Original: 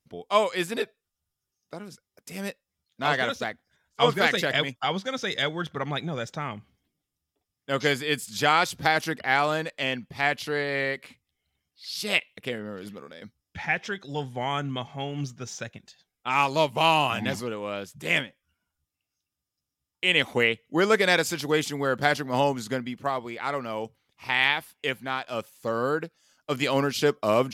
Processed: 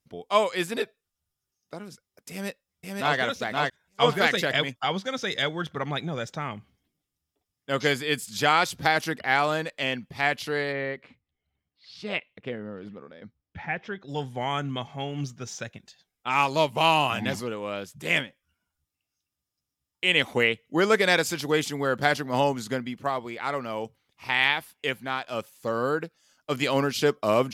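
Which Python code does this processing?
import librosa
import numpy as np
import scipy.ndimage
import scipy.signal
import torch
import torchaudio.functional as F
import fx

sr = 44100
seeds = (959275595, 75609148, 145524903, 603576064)

y = fx.echo_throw(x, sr, start_s=2.31, length_s=0.86, ms=520, feedback_pct=15, wet_db=-1.5)
y = fx.spacing_loss(y, sr, db_at_10k=28, at=(10.71, 14.07), fade=0.02)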